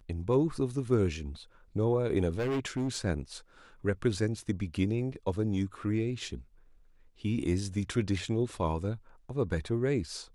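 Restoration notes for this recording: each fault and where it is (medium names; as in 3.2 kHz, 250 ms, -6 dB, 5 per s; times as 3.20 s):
2.29–2.97 s: clipped -27.5 dBFS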